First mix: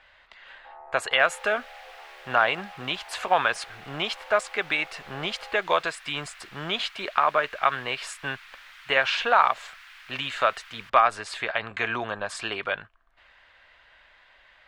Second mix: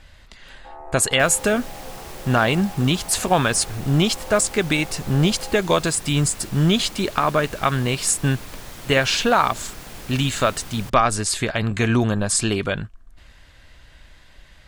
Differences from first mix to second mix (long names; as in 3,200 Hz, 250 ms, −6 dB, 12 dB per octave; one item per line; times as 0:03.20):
first sound +4.0 dB
second sound: remove high-pass filter 1,400 Hz 24 dB per octave
master: remove three-way crossover with the lows and the highs turned down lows −23 dB, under 560 Hz, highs −23 dB, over 3,400 Hz